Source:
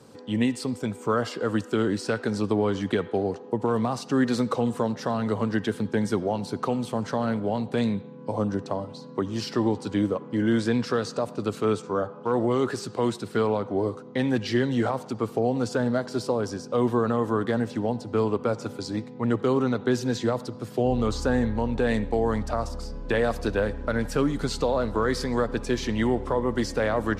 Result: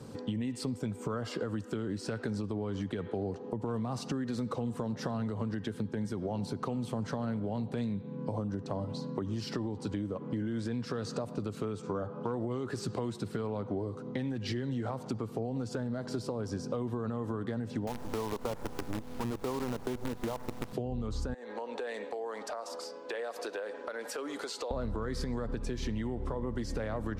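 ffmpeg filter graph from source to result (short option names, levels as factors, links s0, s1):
-filter_complex "[0:a]asettb=1/sr,asplit=3[s0][s1][s2];[s0]atrim=end=17.874[s3];[s1]atrim=start=17.87:end=20.73,asetpts=PTS-STARTPTS,afade=t=in:d=0.004:c=qsin,afade=t=out:st=2.856:d=0.004:c=qsin,lowpass=f=940:t=q:w=3.4,equalizer=f=100:w=0.89:g=-7,acrusher=bits=5:dc=4:mix=0:aa=0.000001[s4];[s2]atrim=start=20.726[s5];[s3][s4]acrossfade=d=0.004:c1=hsin:c2=qsin[s6];[s6][s5]acrossfade=d=0.004:c1=qsin:c2=hsin,asettb=1/sr,asplit=3[s7][s8][s9];[s7]atrim=end=21.344[s10];[s8]atrim=start=21.34:end=24.71,asetpts=PTS-STARTPTS,afade=t=in:d=0.004:c=qsin,afade=t=out:st=3.366:d=0.004:c=qsin,highpass=f=420:w=0.5412,highpass=f=420:w=1.3066,acompressor=threshold=0.0158:ratio=6:attack=3.2:release=140:knee=1:detection=peak[s11];[s9]atrim=start=24.706[s12];[s10][s11]acrossfade=d=0.004:c1=hsin:c2=qsin[s13];[s13][s12]acrossfade=d=0.004:c1=qsin:c2=hsin,lowshelf=f=230:g=10.5,alimiter=limit=0.106:level=0:latency=1:release=235,acompressor=threshold=0.0282:ratio=6"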